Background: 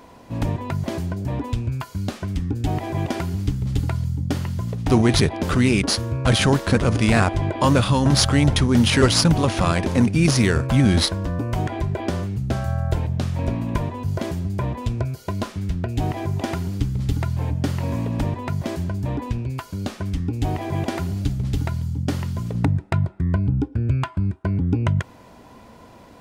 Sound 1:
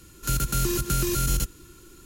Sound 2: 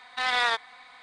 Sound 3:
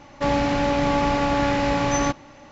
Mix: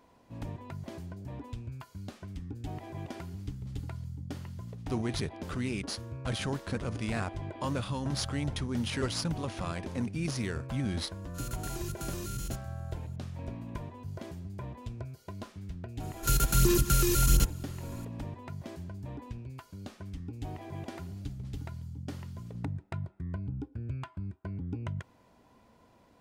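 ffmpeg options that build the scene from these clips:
-filter_complex "[1:a]asplit=2[s0][s1];[0:a]volume=0.158[s2];[s0]equalizer=f=13000:w=2.7:g=-6[s3];[s1]aphaser=in_gain=1:out_gain=1:delay=2.4:decay=0.41:speed=1.4:type=sinusoidal[s4];[s3]atrim=end=2.05,asetpts=PTS-STARTPTS,volume=0.2,afade=t=in:d=0.004:c=hsin,afade=t=out:st=2.046:d=0.004:c=hsin,adelay=11110[s5];[s4]atrim=end=2.05,asetpts=PTS-STARTPTS,volume=0.794,afade=t=in:d=0.004:c=hsin,afade=t=out:st=2.046:d=0.004:c=hsin,adelay=16000[s6];[s2][s5][s6]amix=inputs=3:normalize=0"

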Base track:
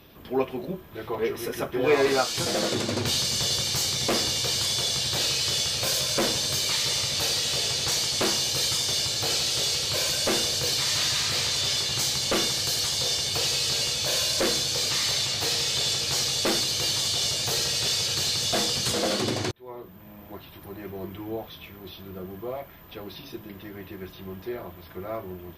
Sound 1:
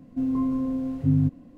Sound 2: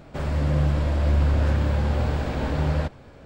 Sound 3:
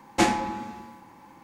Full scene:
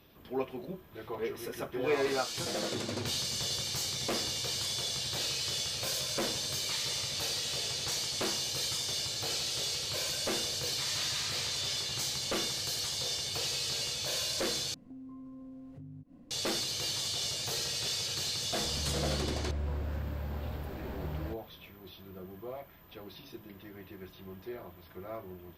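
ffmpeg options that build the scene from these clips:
-filter_complex "[0:a]volume=0.376[s0];[1:a]acompressor=threshold=0.01:ratio=6:attack=3.2:release=140:knee=1:detection=peak[s1];[s0]asplit=2[s2][s3];[s2]atrim=end=14.744[s4];[s1]atrim=end=1.57,asetpts=PTS-STARTPTS,volume=0.473[s5];[s3]atrim=start=16.306[s6];[2:a]atrim=end=3.25,asetpts=PTS-STARTPTS,volume=0.178,afade=t=in:d=0.004:c=hsin,afade=t=out:st=3.246:d=0.004:c=hsin,adelay=18460[s7];[s4][s5]acrossfade=d=0.004:c1=hsin:c2=hsin[s8];[s8][s6]acrossfade=d=0.004:c1=hsin:c2=hsin[s9];[s9][s7]amix=inputs=2:normalize=0"

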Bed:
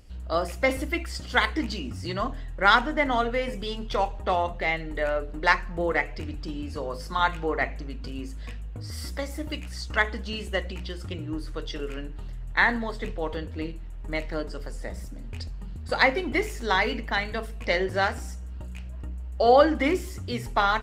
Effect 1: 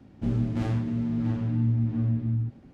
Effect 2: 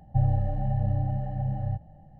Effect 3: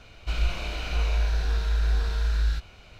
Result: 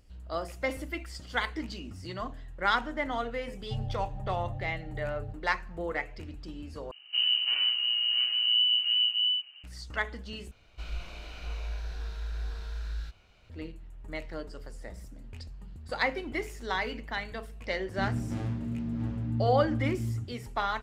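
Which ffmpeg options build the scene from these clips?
-filter_complex "[1:a]asplit=2[s0][s1];[0:a]volume=0.398[s2];[s0]lowpass=f=2600:t=q:w=0.5098,lowpass=f=2600:t=q:w=0.6013,lowpass=f=2600:t=q:w=0.9,lowpass=f=2600:t=q:w=2.563,afreqshift=-3100[s3];[s2]asplit=3[s4][s5][s6];[s4]atrim=end=6.914[s7];[s3]atrim=end=2.73,asetpts=PTS-STARTPTS,volume=0.891[s8];[s5]atrim=start=9.636:end=10.514[s9];[3:a]atrim=end=2.99,asetpts=PTS-STARTPTS,volume=0.266[s10];[s6]atrim=start=13.496[s11];[2:a]atrim=end=2.19,asetpts=PTS-STARTPTS,volume=0.266,afade=t=in:d=0.004:c=hsin,afade=t=out:st=2.186:d=0.004:c=hsin,adelay=3560[s12];[s1]atrim=end=2.73,asetpts=PTS-STARTPTS,volume=0.501,afade=t=in:d=0.004:c=hsin,afade=t=out:st=2.726:d=0.004:c=hsin,adelay=17750[s13];[s7][s8]acrossfade=d=0.004:c1=hsin:c2=hsin[s14];[s14][s9]acrossfade=d=0.004:c1=hsin:c2=hsin[s15];[s15][s10]acrossfade=d=0.004:c1=hsin:c2=hsin[s16];[s16][s11]acrossfade=d=0.004:c1=hsin:c2=hsin[s17];[s17][s12][s13]amix=inputs=3:normalize=0"

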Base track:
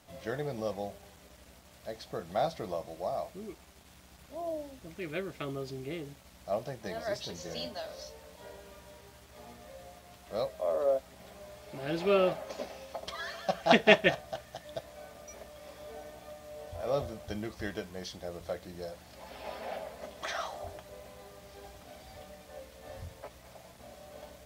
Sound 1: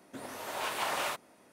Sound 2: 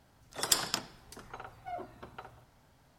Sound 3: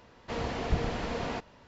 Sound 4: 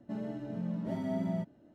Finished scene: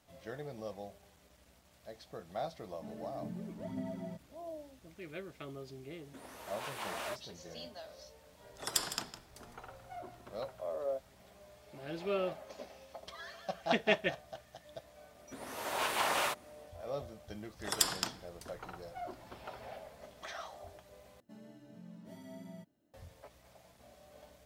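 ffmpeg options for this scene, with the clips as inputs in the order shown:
-filter_complex "[4:a]asplit=2[s0][s1];[1:a]asplit=2[s2][s3];[2:a]asplit=2[s4][s5];[0:a]volume=0.376[s6];[s0]aphaser=in_gain=1:out_gain=1:delay=3:decay=0.5:speed=1.9:type=triangular[s7];[s4]aecho=1:1:158:0.237[s8];[s3]dynaudnorm=f=220:g=3:m=2.11[s9];[s1]crystalizer=i=6:c=0[s10];[s6]asplit=2[s11][s12];[s11]atrim=end=21.204[s13];[s10]atrim=end=1.74,asetpts=PTS-STARTPTS,volume=0.15[s14];[s12]atrim=start=22.936[s15];[s7]atrim=end=1.74,asetpts=PTS-STARTPTS,volume=0.398,afade=t=in:d=0.004:c=hsin,afade=t=out:st=1.736:d=0.004:c=hsin,adelay=2730[s16];[s2]atrim=end=1.52,asetpts=PTS-STARTPTS,volume=0.376,afade=t=in:d=0.004:c=hsin,afade=t=out:st=1.516:d=0.004:c=hsin,adelay=6000[s17];[s8]atrim=end=2.98,asetpts=PTS-STARTPTS,volume=0.531,afade=t=in:d=0.004:c=hsin,afade=t=out:st=2.976:d=0.004:c=hsin,adelay=8240[s18];[s9]atrim=end=1.52,asetpts=PTS-STARTPTS,volume=0.531,afade=t=in:d=0.004:c=hsin,afade=t=out:st=1.516:d=0.004:c=hsin,adelay=15180[s19];[s5]atrim=end=2.98,asetpts=PTS-STARTPTS,volume=0.75,afade=t=in:d=0.004:c=hsin,afade=t=out:st=2.976:d=0.004:c=hsin,adelay=17290[s20];[s13][s14]acrossfade=d=0.004:c1=hsin:c2=hsin[s21];[s21][s15]acrossfade=d=0.004:c1=hsin:c2=hsin[s22];[s22][s16][s17][s18][s19][s20]amix=inputs=6:normalize=0"

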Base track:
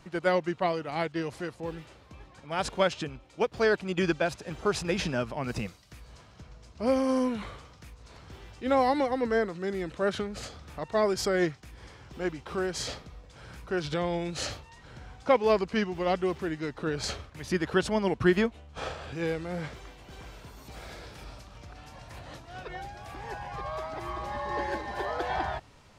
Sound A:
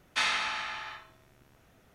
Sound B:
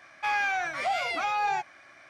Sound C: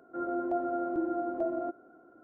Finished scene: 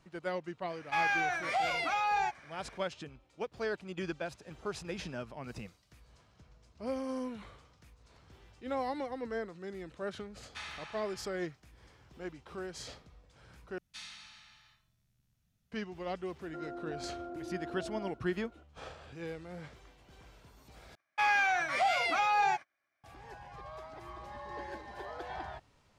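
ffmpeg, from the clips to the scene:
-filter_complex "[2:a]asplit=2[s0][s1];[1:a]asplit=2[s2][s3];[0:a]volume=0.282[s4];[s2]afreqshift=-23[s5];[s3]firequalizer=gain_entry='entry(180,0);entry(330,-19);entry(4300,-2)':delay=0.05:min_phase=1[s6];[3:a]acompressor=threshold=0.0141:ratio=6:attack=3.2:release=140:knee=1:detection=peak[s7];[s1]agate=range=0.0316:threshold=0.00355:ratio=16:release=100:detection=peak[s8];[s4]asplit=3[s9][s10][s11];[s9]atrim=end=13.784[s12];[s6]atrim=end=1.94,asetpts=PTS-STARTPTS,volume=0.266[s13];[s10]atrim=start=15.716:end=20.954[s14];[s8]atrim=end=2.09,asetpts=PTS-STARTPTS,volume=0.944[s15];[s11]atrim=start=23.036[s16];[s0]atrim=end=2.09,asetpts=PTS-STARTPTS,volume=0.708,afade=t=in:d=0.004:c=hsin,afade=t=out:st=2.086:d=0.004:c=hsin,adelay=690[s17];[s5]atrim=end=1.94,asetpts=PTS-STARTPTS,volume=0.158,afade=t=in:d=0.004:c=hsin,afade=t=out:st=1.936:d=0.004:c=hsin,adelay=10390[s18];[s7]atrim=end=2.23,asetpts=PTS-STARTPTS,volume=0.75,afade=t=in:d=0.004:c=hsin,afade=t=out:st=2.226:d=0.004:c=hsin,adelay=16400[s19];[s12][s13]acrossfade=d=0.004:c1=hsin:c2=hsin[s20];[s20][s14]acrossfade=d=0.004:c1=hsin:c2=hsin[s21];[s21][s15]acrossfade=d=0.004:c1=hsin:c2=hsin[s22];[s22][s16]acrossfade=d=0.004:c1=hsin:c2=hsin[s23];[s23][s17][s18][s19]amix=inputs=4:normalize=0"

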